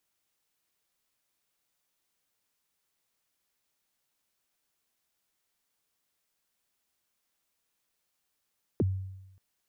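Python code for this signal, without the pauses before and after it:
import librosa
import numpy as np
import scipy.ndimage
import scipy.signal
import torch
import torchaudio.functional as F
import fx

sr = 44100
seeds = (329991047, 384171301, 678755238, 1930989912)

y = fx.drum_kick(sr, seeds[0], length_s=0.58, level_db=-21, start_hz=480.0, end_hz=95.0, sweep_ms=30.0, decay_s=0.96, click=False)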